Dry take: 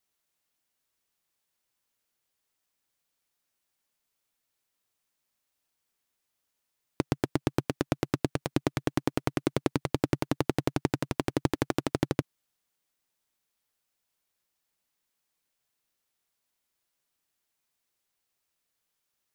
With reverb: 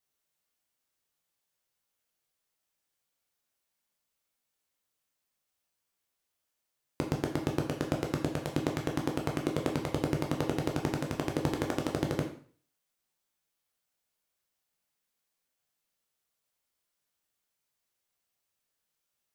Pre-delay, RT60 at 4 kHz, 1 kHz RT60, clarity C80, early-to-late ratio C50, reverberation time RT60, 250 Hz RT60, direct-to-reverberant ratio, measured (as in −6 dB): 5 ms, 0.45 s, 0.45 s, 11.5 dB, 8.0 dB, 0.45 s, 0.45 s, 1.0 dB